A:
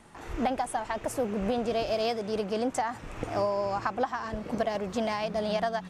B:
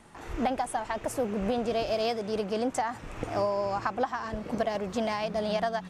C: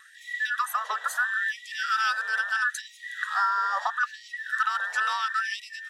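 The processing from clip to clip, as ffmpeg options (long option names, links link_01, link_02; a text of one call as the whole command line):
ffmpeg -i in.wav -af anull out.wav
ffmpeg -i in.wav -af "afftfilt=real='real(if(between(b,1,1012),(2*floor((b-1)/92)+1)*92-b,b),0)':imag='imag(if(between(b,1,1012),(2*floor((b-1)/92)+1)*92-b,b),0)*if(between(b,1,1012),-1,1)':win_size=2048:overlap=0.75,afftfilt=real='re*gte(b*sr/1024,410*pow(1900/410,0.5+0.5*sin(2*PI*0.75*pts/sr)))':imag='im*gte(b*sr/1024,410*pow(1900/410,0.5+0.5*sin(2*PI*0.75*pts/sr)))':win_size=1024:overlap=0.75,volume=3dB" out.wav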